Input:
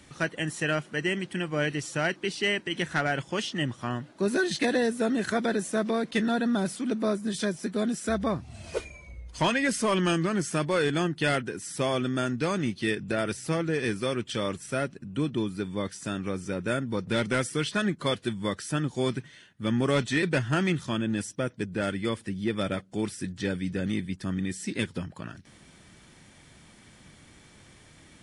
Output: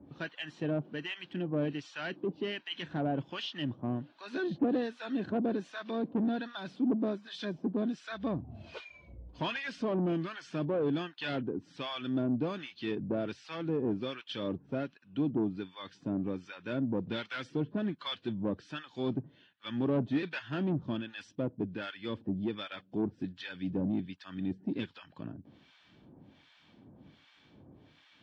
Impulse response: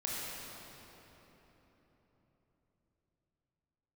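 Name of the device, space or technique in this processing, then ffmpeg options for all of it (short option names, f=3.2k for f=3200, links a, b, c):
guitar amplifier with harmonic tremolo: -filter_complex "[0:a]acrossover=split=940[a][b];[a]aeval=exprs='val(0)*(1-1/2+1/2*cos(2*PI*1.3*n/s))':c=same[c];[b]aeval=exprs='val(0)*(1-1/2-1/2*cos(2*PI*1.3*n/s))':c=same[d];[c][d]amix=inputs=2:normalize=0,asoftclip=type=tanh:threshold=-26.5dB,highpass=79,equalizer=f=280:t=q:w=4:g=7,equalizer=f=1.3k:t=q:w=4:g=-5,equalizer=f=2k:t=q:w=4:g=-9,lowpass=f=3.9k:w=0.5412,lowpass=f=3.9k:w=1.3066"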